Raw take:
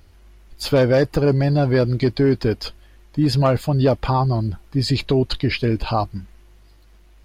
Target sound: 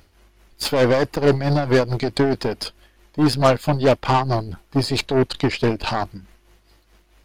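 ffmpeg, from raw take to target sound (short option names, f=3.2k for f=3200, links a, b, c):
-af "tremolo=f=4.6:d=0.58,aeval=exprs='0.422*(cos(1*acos(clip(val(0)/0.422,-1,1)))-cos(1*PI/2))+0.0473*(cos(8*acos(clip(val(0)/0.422,-1,1)))-cos(8*PI/2))':c=same,lowshelf=f=140:g=-9,volume=3.5dB"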